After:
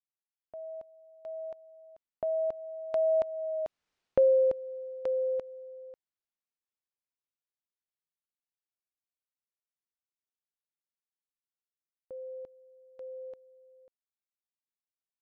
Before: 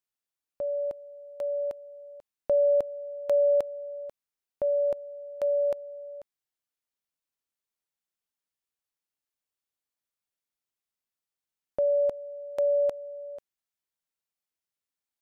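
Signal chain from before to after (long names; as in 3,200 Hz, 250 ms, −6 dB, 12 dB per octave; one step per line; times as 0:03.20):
source passing by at 0:03.95, 37 m/s, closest 8.3 metres
in parallel at 0 dB: downward compressor, threshold −45 dBFS, peak gain reduction 16 dB
on the sum: high-frequency loss of the air 120 metres
level +7 dB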